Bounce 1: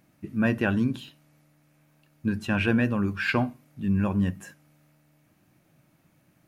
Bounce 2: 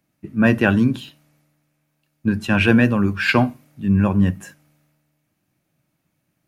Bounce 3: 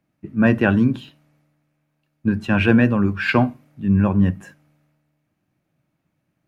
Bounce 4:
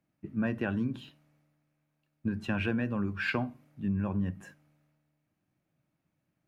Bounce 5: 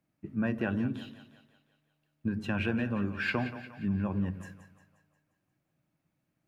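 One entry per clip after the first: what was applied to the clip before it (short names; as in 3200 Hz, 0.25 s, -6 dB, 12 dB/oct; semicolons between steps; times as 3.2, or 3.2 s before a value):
three-band expander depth 40%; gain +7.5 dB
high shelf 4000 Hz -12 dB
compressor 5:1, threshold -20 dBFS, peak gain reduction 9.5 dB; gain -7.5 dB
split-band echo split 540 Hz, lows 0.106 s, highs 0.177 s, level -12 dB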